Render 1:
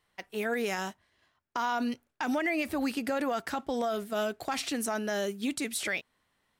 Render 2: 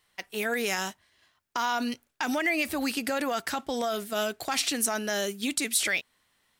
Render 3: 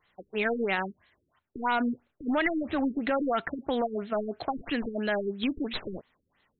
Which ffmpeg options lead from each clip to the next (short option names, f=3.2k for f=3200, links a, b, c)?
-af "highshelf=f=2k:g=9.5"
-af "aeval=exprs='clip(val(0),-1,0.0473)':c=same,afftfilt=real='re*lt(b*sr/1024,440*pow(4300/440,0.5+0.5*sin(2*PI*3*pts/sr)))':imag='im*lt(b*sr/1024,440*pow(4300/440,0.5+0.5*sin(2*PI*3*pts/sr)))':win_size=1024:overlap=0.75,volume=3dB"